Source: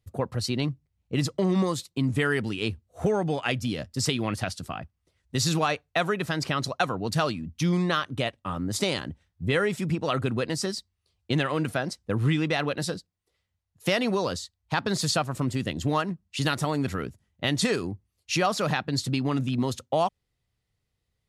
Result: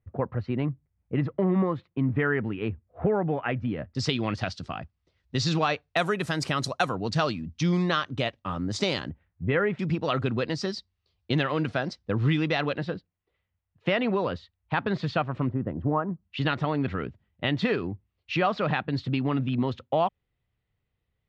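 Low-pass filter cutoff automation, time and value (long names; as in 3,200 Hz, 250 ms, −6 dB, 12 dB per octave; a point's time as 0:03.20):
low-pass filter 24 dB per octave
2,100 Hz
from 0:03.95 5,200 Hz
from 0:05.97 11,000 Hz
from 0:06.98 6,000 Hz
from 0:09.10 2,400 Hz
from 0:09.79 5,000 Hz
from 0:12.77 3,000 Hz
from 0:15.49 1,300 Hz
from 0:16.23 3,300 Hz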